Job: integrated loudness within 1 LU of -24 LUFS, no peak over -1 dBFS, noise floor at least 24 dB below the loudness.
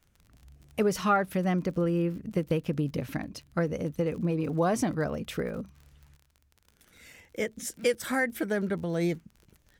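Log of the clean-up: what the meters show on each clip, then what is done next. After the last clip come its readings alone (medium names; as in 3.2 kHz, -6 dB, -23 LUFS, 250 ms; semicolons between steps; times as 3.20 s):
tick rate 43 per s; loudness -30.0 LUFS; peak level -14.0 dBFS; loudness target -24.0 LUFS
-> de-click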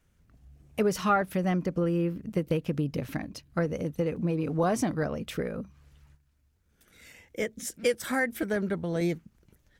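tick rate 0.61 per s; loudness -30.0 LUFS; peak level -14.0 dBFS; loudness target -24.0 LUFS
-> trim +6 dB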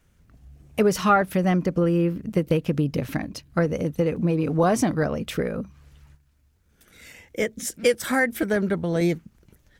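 loudness -24.0 LUFS; peak level -8.0 dBFS; noise floor -63 dBFS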